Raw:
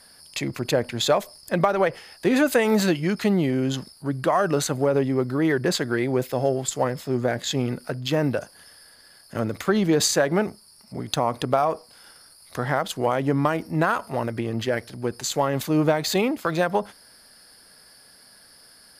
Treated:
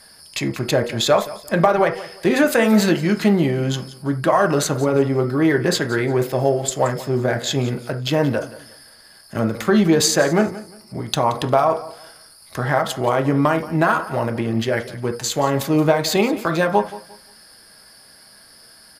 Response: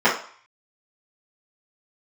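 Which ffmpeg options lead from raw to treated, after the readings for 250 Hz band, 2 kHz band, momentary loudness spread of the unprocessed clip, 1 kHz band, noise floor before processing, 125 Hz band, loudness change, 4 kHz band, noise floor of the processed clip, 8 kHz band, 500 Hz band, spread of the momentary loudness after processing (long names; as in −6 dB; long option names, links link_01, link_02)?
+4.5 dB, +5.0 dB, 9 LU, +5.0 dB, −52 dBFS, +5.0 dB, +4.5 dB, +4.0 dB, −48 dBFS, +4.0 dB, +4.5 dB, 10 LU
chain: -filter_complex "[0:a]aecho=1:1:176|352|528:0.141|0.0381|0.0103,asplit=2[link_01][link_02];[1:a]atrim=start_sample=2205,atrim=end_sample=4410[link_03];[link_02][link_03]afir=irnorm=-1:irlink=0,volume=-26.5dB[link_04];[link_01][link_04]amix=inputs=2:normalize=0,volume=4dB"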